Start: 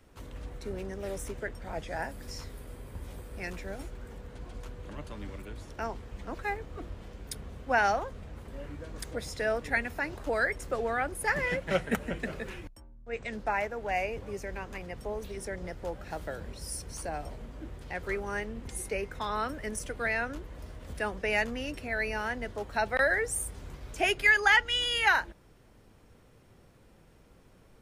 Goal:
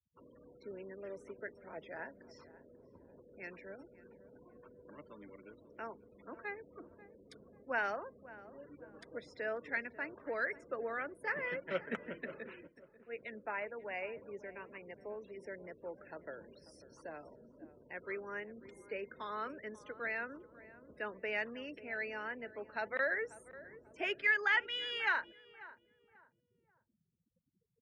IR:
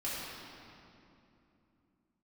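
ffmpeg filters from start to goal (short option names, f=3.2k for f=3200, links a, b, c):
-filter_complex "[0:a]afftfilt=real='re*gte(hypot(re,im),0.00631)':imag='im*gte(hypot(re,im),0.00631)':win_size=1024:overlap=0.75,highpass=260,lowpass=2.9k,equalizer=f=770:t=o:w=0.24:g=-12,asplit=2[a][b];[b]adelay=540,lowpass=f=1.1k:p=1,volume=-15.5dB,asplit=2[c][d];[d]adelay=540,lowpass=f=1.1k:p=1,volume=0.38,asplit=2[e][f];[f]adelay=540,lowpass=f=1.1k:p=1,volume=0.38[g];[a][c][e][g]amix=inputs=4:normalize=0,volume=-7dB"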